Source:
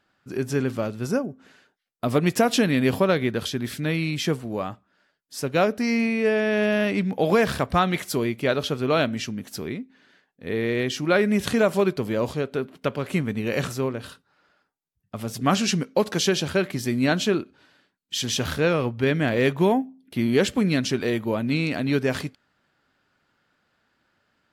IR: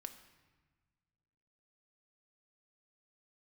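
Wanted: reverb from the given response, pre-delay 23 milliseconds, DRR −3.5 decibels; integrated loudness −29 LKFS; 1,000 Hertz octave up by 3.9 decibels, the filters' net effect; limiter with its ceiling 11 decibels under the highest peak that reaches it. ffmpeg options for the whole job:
-filter_complex "[0:a]equalizer=frequency=1000:width_type=o:gain=5.5,alimiter=limit=-16.5dB:level=0:latency=1,asplit=2[link_01][link_02];[1:a]atrim=start_sample=2205,adelay=23[link_03];[link_02][link_03]afir=irnorm=-1:irlink=0,volume=8dB[link_04];[link_01][link_04]amix=inputs=2:normalize=0,volume=-7.5dB"

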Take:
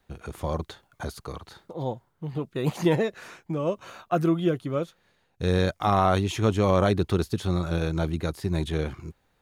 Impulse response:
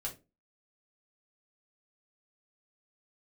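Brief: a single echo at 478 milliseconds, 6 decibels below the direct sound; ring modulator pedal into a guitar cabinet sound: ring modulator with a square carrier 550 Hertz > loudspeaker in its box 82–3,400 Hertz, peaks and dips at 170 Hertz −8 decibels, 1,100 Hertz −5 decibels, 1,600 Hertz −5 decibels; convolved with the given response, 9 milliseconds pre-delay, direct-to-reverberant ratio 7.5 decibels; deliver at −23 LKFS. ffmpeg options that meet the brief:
-filter_complex "[0:a]aecho=1:1:478:0.501,asplit=2[link_01][link_02];[1:a]atrim=start_sample=2205,adelay=9[link_03];[link_02][link_03]afir=irnorm=-1:irlink=0,volume=-7.5dB[link_04];[link_01][link_04]amix=inputs=2:normalize=0,aeval=exprs='val(0)*sgn(sin(2*PI*550*n/s))':channel_layout=same,highpass=82,equalizer=frequency=170:width_type=q:width=4:gain=-8,equalizer=frequency=1100:width_type=q:width=4:gain=-5,equalizer=frequency=1600:width_type=q:width=4:gain=-5,lowpass=frequency=3400:width=0.5412,lowpass=frequency=3400:width=1.3066,volume=3.5dB"

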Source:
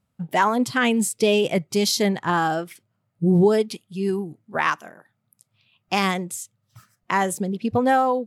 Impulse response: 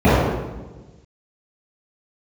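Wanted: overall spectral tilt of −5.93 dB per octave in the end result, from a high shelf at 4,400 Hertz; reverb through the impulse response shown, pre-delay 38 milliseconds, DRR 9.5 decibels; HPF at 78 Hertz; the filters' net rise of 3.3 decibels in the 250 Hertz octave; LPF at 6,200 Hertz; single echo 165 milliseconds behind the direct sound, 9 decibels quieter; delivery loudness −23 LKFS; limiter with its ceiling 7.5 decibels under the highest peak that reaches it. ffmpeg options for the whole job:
-filter_complex "[0:a]highpass=78,lowpass=6200,equalizer=frequency=250:width_type=o:gain=4.5,highshelf=frequency=4400:gain=-8,alimiter=limit=-13dB:level=0:latency=1,aecho=1:1:165:0.355,asplit=2[link_01][link_02];[1:a]atrim=start_sample=2205,adelay=38[link_03];[link_02][link_03]afir=irnorm=-1:irlink=0,volume=-38.5dB[link_04];[link_01][link_04]amix=inputs=2:normalize=0,volume=-2dB"

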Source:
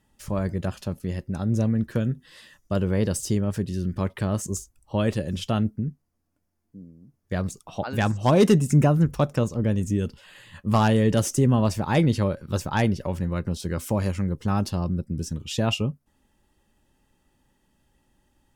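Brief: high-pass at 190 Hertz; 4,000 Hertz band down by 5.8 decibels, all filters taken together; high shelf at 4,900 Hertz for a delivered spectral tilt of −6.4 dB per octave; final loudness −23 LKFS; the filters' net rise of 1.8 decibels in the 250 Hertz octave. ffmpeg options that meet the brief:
ffmpeg -i in.wav -af "highpass=190,equalizer=frequency=250:width_type=o:gain=5,equalizer=frequency=4000:width_type=o:gain=-6.5,highshelf=frequency=4900:gain=-5,volume=2dB" out.wav

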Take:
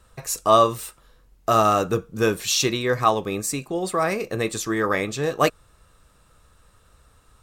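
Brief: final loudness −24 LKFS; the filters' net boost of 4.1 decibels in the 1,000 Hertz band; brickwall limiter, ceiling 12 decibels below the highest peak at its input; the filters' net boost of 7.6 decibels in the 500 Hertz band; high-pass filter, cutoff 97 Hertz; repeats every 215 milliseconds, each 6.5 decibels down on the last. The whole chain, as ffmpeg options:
ffmpeg -i in.wav -af "highpass=97,equalizer=frequency=500:width_type=o:gain=8.5,equalizer=frequency=1000:width_type=o:gain=3,alimiter=limit=-10dB:level=0:latency=1,aecho=1:1:215|430|645|860|1075|1290:0.473|0.222|0.105|0.0491|0.0231|0.0109,volume=-3.5dB" out.wav

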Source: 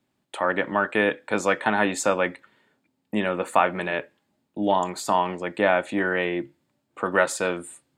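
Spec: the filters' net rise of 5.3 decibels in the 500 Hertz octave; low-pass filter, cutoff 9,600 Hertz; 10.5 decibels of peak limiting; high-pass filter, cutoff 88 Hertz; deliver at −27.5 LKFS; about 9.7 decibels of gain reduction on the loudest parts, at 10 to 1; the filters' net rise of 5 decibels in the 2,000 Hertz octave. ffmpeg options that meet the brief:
ffmpeg -i in.wav -af "highpass=88,lowpass=9600,equalizer=frequency=500:width_type=o:gain=6,equalizer=frequency=2000:width_type=o:gain=6,acompressor=threshold=-20dB:ratio=10,volume=2dB,alimiter=limit=-15dB:level=0:latency=1" out.wav

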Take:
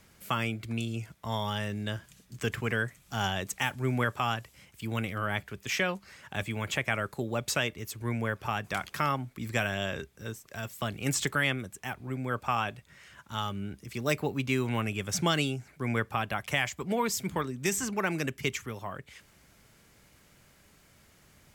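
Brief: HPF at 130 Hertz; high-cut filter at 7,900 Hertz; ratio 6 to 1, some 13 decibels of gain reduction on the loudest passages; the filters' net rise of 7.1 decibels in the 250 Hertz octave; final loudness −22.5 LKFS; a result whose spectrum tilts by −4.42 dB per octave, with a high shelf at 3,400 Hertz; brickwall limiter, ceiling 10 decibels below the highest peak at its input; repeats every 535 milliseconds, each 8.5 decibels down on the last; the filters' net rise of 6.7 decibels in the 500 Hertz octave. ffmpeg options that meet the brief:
ffmpeg -i in.wav -af "highpass=130,lowpass=7900,equalizer=frequency=250:width_type=o:gain=7.5,equalizer=frequency=500:width_type=o:gain=6,highshelf=frequency=3400:gain=4.5,acompressor=threshold=-33dB:ratio=6,alimiter=level_in=4.5dB:limit=-24dB:level=0:latency=1,volume=-4.5dB,aecho=1:1:535|1070|1605|2140:0.376|0.143|0.0543|0.0206,volume=17dB" out.wav

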